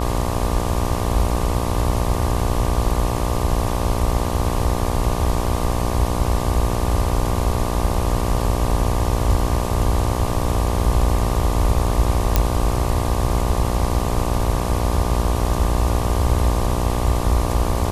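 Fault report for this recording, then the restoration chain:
mains buzz 60 Hz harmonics 20 −24 dBFS
0:12.36: click −1 dBFS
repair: click removal
hum removal 60 Hz, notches 20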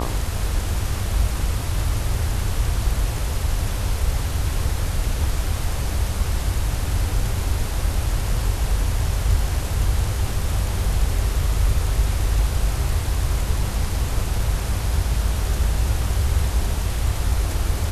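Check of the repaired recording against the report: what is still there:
none of them is left

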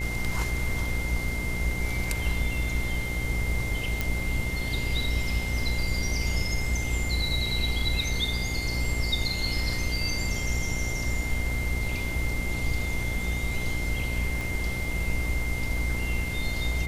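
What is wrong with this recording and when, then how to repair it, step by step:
mains buzz 60 Hz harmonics 16 −32 dBFS
whistle 2,100 Hz −33 dBFS
0:04.01: click
0:14.41: click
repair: click removal
notch filter 2,100 Hz, Q 30
hum removal 60 Hz, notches 16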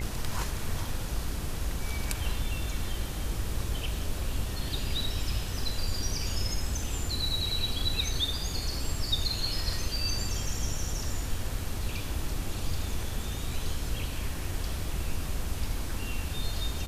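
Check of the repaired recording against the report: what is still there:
0:14.41: click

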